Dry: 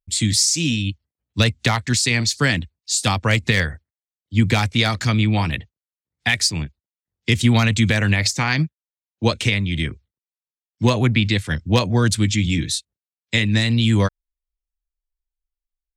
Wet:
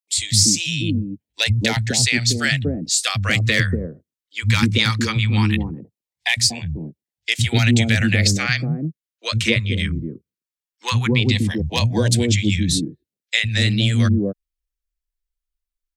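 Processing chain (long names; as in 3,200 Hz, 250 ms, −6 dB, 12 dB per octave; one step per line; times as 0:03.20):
auto-filter notch saw down 0.18 Hz 620–1,500 Hz
three-band delay without the direct sound highs, lows, mids 100/240 ms, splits 170/630 Hz
level +2 dB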